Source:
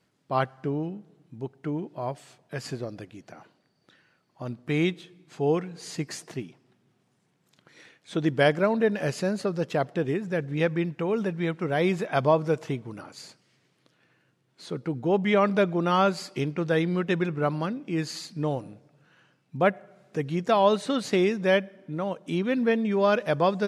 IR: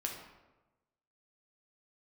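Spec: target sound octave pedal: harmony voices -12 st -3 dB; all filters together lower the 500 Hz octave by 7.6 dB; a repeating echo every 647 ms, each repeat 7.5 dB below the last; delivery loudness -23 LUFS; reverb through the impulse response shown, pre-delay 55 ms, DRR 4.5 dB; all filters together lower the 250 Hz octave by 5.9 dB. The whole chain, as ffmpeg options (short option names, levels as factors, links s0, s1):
-filter_complex "[0:a]equalizer=f=250:t=o:g=-6.5,equalizer=f=500:t=o:g=-8,aecho=1:1:647|1294|1941|2588|3235:0.422|0.177|0.0744|0.0312|0.0131,asplit=2[s0][s1];[1:a]atrim=start_sample=2205,adelay=55[s2];[s1][s2]afir=irnorm=-1:irlink=0,volume=0.531[s3];[s0][s3]amix=inputs=2:normalize=0,asplit=2[s4][s5];[s5]asetrate=22050,aresample=44100,atempo=2,volume=0.708[s6];[s4][s6]amix=inputs=2:normalize=0,volume=1.88"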